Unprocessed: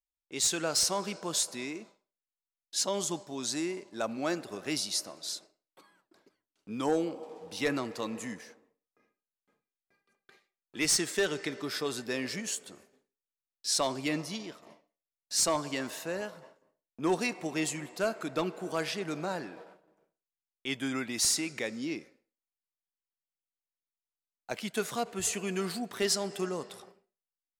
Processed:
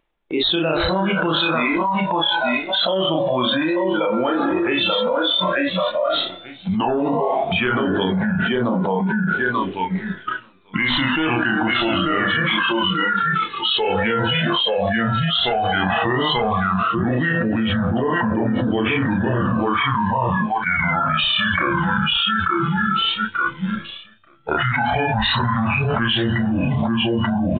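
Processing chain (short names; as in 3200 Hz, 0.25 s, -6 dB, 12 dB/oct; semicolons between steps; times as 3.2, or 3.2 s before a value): gliding pitch shift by -10 st starting unshifted; notches 50/100/150/200/250 Hz; resonator 170 Hz, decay 1.1 s, mix 60%; on a send: feedback echo 0.887 s, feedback 18%, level -8 dB; on the sum: wow and flutter 25 cents; doubler 32 ms -3 dB; spectral noise reduction 18 dB; phaser 0.11 Hz, delay 2.4 ms, feedback 65%; downsampling 8000 Hz; reverse; upward compressor, threshold -58 dBFS; reverse; low shelf 200 Hz -5.5 dB; fast leveller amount 100%; gain +6.5 dB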